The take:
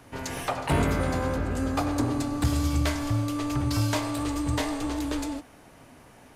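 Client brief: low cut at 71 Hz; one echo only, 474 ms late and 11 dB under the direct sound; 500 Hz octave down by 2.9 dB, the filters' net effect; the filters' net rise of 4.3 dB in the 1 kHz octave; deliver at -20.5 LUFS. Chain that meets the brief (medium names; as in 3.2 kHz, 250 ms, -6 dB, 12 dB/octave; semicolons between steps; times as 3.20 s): high-pass 71 Hz; peaking EQ 500 Hz -6 dB; peaking EQ 1 kHz +7 dB; delay 474 ms -11 dB; trim +7.5 dB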